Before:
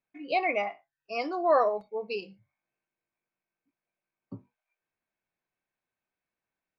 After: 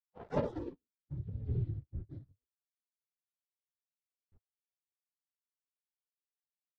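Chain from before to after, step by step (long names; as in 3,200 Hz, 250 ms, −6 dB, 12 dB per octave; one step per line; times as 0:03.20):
lower of the sound and its delayed copy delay 9 ms
gate on every frequency bin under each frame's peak −30 dB weak
0:01.17–0:04.35: graphic EQ with 15 bands 400 Hz +9 dB, 1,000 Hz −11 dB, 4,000 Hz +8 dB
leveller curve on the samples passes 3
low-pass filter sweep 590 Hz → 110 Hz, 0:00.33–0:01.24
level +15.5 dB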